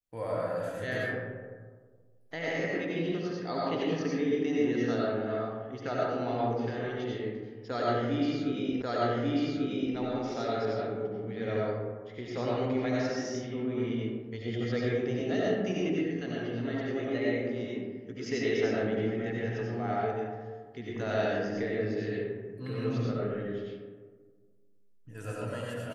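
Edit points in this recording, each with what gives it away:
8.82 repeat of the last 1.14 s

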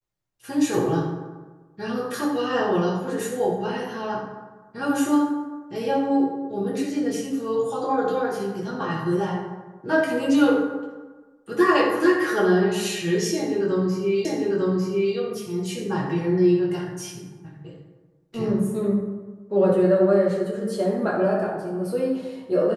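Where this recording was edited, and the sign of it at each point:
14.25 repeat of the last 0.9 s

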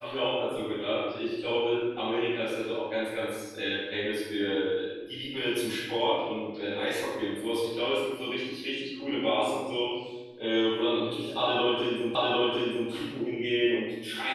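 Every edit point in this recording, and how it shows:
12.15 repeat of the last 0.75 s

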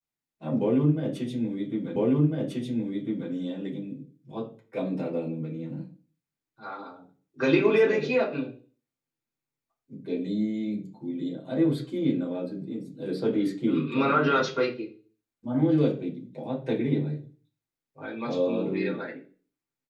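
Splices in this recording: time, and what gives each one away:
1.96 repeat of the last 1.35 s

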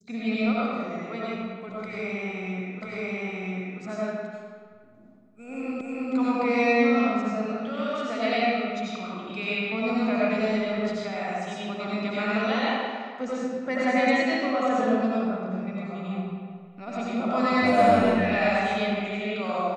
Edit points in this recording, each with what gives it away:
2.82 repeat of the last 0.99 s
5.81 repeat of the last 0.32 s

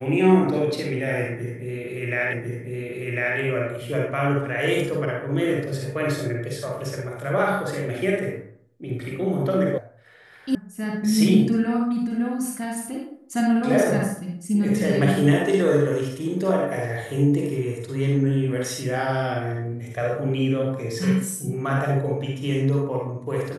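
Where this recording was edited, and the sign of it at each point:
2.33 repeat of the last 1.05 s
9.78 sound cut off
10.55 sound cut off

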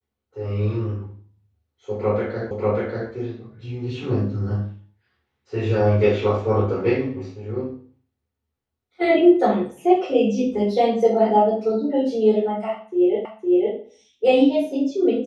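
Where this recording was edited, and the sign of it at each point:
2.51 repeat of the last 0.59 s
13.25 repeat of the last 0.51 s

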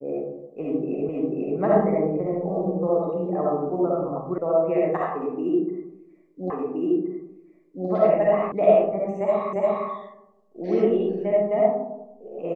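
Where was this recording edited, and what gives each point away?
1.09 repeat of the last 0.49 s
4.38 sound cut off
6.5 repeat of the last 1.37 s
8.52 sound cut off
9.53 repeat of the last 0.35 s

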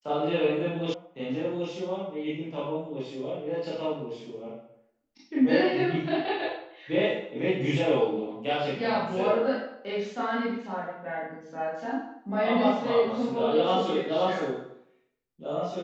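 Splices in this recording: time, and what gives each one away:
0.94 sound cut off

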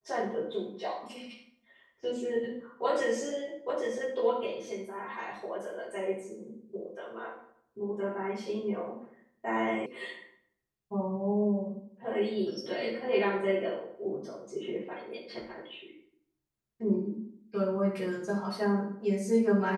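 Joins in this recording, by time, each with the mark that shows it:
9.86 sound cut off

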